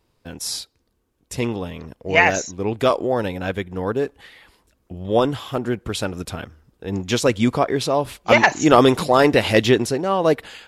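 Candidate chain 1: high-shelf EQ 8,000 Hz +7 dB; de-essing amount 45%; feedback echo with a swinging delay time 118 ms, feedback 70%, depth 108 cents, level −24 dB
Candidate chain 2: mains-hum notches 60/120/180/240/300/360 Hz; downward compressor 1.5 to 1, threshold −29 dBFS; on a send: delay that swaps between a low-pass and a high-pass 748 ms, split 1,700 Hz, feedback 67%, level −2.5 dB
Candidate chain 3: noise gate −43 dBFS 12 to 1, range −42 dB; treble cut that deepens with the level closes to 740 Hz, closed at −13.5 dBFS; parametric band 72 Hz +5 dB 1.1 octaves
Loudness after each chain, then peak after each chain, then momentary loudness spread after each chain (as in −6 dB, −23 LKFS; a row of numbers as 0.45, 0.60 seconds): −19.5, −24.5, −21.5 LKFS; −1.0, −7.0, −2.0 dBFS; 16, 11, 15 LU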